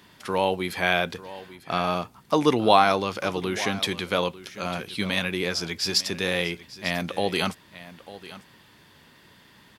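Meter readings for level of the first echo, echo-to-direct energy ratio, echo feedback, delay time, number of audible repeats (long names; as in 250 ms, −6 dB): −16.5 dB, −16.5 dB, repeats not evenly spaced, 897 ms, 1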